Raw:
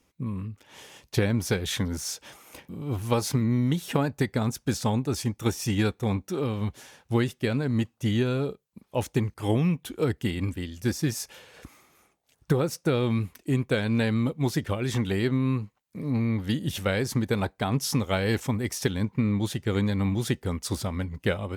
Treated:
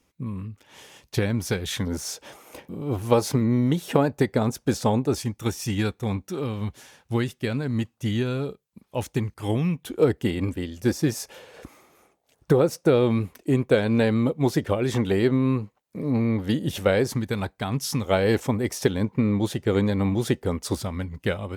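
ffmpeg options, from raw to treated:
-af "asetnsamples=n=441:p=0,asendcmd='1.87 equalizer g 7.5;5.18 equalizer g -1;9.87 equalizer g 8;17.15 equalizer g -2.5;18.05 equalizer g 7.5;20.75 equalizer g 0.5',equalizer=f=510:t=o:w=2:g=0"

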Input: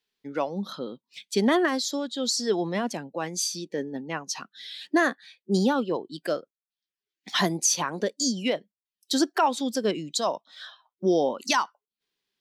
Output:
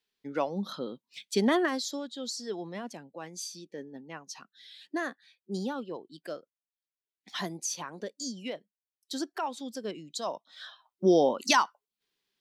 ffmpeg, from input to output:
-af "volume=2.99,afade=t=out:st=1.27:d=1.1:silence=0.354813,afade=t=in:st=10.09:d=0.99:silence=0.266073"

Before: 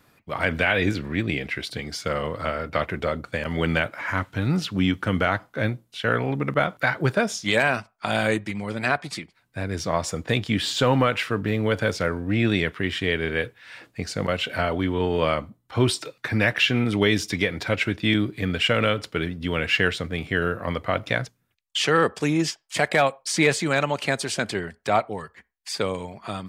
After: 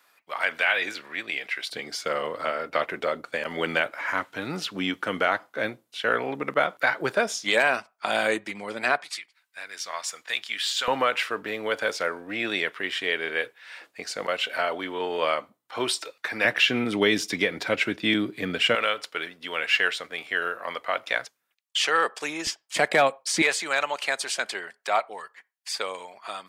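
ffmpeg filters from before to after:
-af "asetnsamples=n=441:p=0,asendcmd='1.72 highpass f 370;9.04 highpass f 1400;10.88 highpass f 520;16.45 highpass f 250;18.75 highpass f 680;22.47 highpass f 240;23.42 highpass f 720',highpass=800"

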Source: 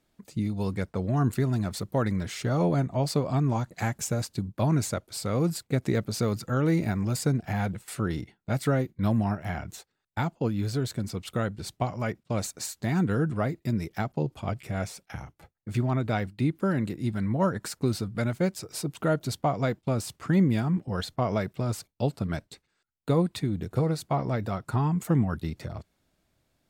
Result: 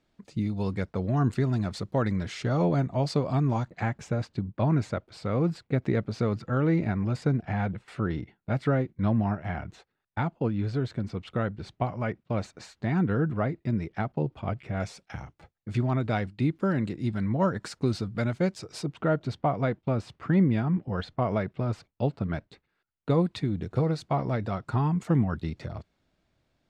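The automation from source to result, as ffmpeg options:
-af "asetnsamples=n=441:p=0,asendcmd='3.68 lowpass f 2800;14.8 lowpass f 5500;18.86 lowpass f 2800;23.1 lowpass f 4900',lowpass=5300"

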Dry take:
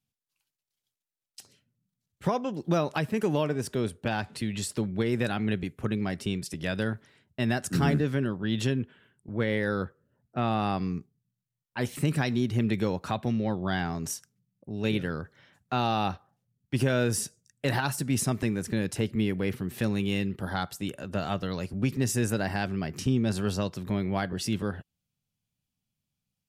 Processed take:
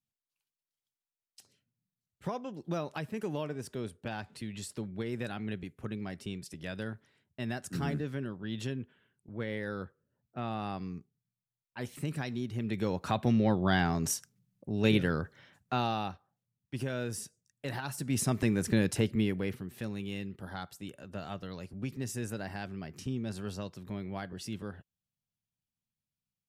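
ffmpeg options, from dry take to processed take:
-af "volume=5.01,afade=t=in:st=12.63:d=0.75:silence=0.281838,afade=t=out:st=15.23:d=0.9:silence=0.251189,afade=t=in:st=17.84:d=0.89:silence=0.251189,afade=t=out:st=18.73:d=0.98:silence=0.251189"

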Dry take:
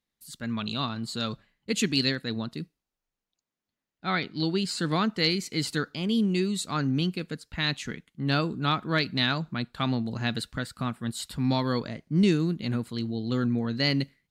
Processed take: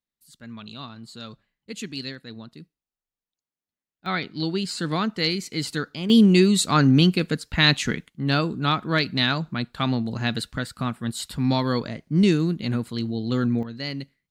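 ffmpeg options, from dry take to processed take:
-af "asetnsamples=n=441:p=0,asendcmd='4.06 volume volume 1dB;6.1 volume volume 10dB;8.08 volume volume 3.5dB;13.63 volume volume -6dB',volume=0.398"

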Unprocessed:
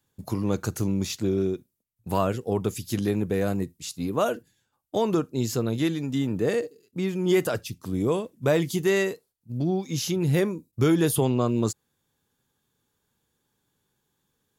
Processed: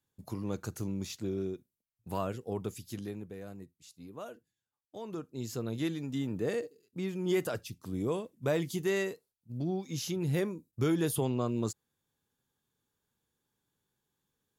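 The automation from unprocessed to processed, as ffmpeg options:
-af "volume=1.19,afade=t=out:st=2.64:d=0.71:silence=0.334965,afade=t=in:st=4.98:d=0.88:silence=0.266073"

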